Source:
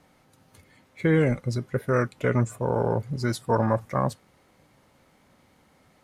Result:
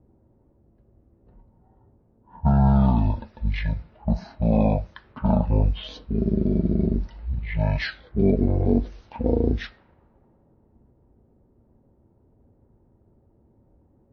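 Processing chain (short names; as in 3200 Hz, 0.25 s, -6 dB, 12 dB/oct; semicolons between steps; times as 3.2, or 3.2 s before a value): low-pass opened by the level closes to 1100 Hz, open at -22.5 dBFS; dynamic EQ 3700 Hz, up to +6 dB, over -50 dBFS, Q 1.1; speed mistake 78 rpm record played at 33 rpm; gain +2.5 dB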